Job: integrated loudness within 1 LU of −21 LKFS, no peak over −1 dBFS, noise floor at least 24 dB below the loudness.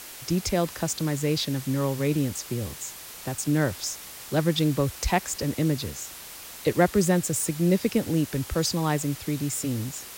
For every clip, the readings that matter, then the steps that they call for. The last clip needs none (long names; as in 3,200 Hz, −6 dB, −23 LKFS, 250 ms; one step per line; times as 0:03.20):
background noise floor −42 dBFS; target noise floor −51 dBFS; integrated loudness −26.5 LKFS; sample peak −8.0 dBFS; target loudness −21.0 LKFS
→ broadband denoise 9 dB, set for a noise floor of −42 dBFS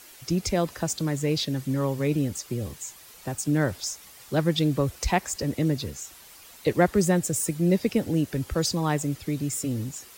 background noise floor −49 dBFS; target noise floor −51 dBFS
→ broadband denoise 6 dB, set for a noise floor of −49 dBFS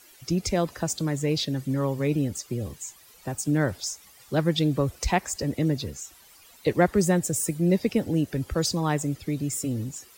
background noise floor −53 dBFS; integrated loudness −26.5 LKFS; sample peak −8.0 dBFS; target loudness −21.0 LKFS
→ level +5.5 dB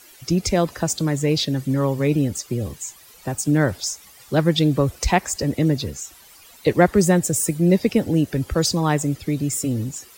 integrated loudness −21.0 LKFS; sample peak −2.5 dBFS; background noise floor −48 dBFS